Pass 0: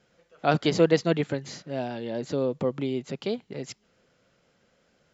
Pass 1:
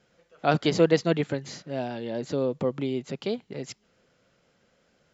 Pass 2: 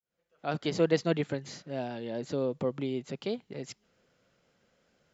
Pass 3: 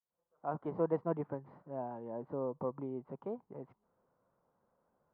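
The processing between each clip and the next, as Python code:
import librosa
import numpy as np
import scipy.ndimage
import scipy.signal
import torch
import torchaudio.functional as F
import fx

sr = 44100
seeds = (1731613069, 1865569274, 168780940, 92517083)

y1 = x
y2 = fx.fade_in_head(y1, sr, length_s=1.01)
y2 = F.gain(torch.from_numpy(y2), -4.0).numpy()
y3 = fx.ladder_lowpass(y2, sr, hz=1100.0, resonance_pct=65)
y3 = F.gain(torch.from_numpy(y3), 2.5).numpy()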